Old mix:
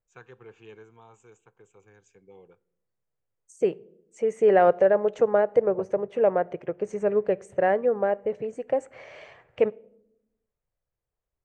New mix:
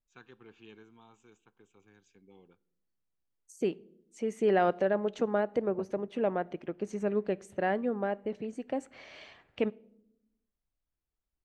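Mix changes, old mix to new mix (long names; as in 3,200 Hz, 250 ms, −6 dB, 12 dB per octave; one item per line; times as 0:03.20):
second voice: remove high-frequency loss of the air 69 metres
master: add octave-band graphic EQ 125/250/500/1,000/2,000/4,000/8,000 Hz −10/+8/−12/−3/−5/+7/−11 dB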